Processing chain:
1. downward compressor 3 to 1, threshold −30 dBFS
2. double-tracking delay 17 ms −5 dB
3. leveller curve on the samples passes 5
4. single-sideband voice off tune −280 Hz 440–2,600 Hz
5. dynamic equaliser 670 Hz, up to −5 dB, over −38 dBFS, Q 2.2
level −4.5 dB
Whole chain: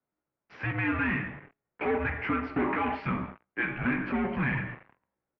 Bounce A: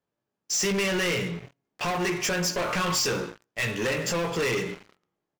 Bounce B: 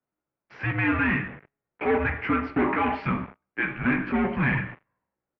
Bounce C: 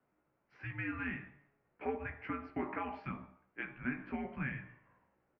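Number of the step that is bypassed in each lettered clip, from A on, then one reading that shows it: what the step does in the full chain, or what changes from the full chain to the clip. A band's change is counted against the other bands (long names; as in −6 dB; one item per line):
4, 4 kHz band +19.5 dB
1, change in momentary loudness spread −1 LU
3, change in crest factor +3.0 dB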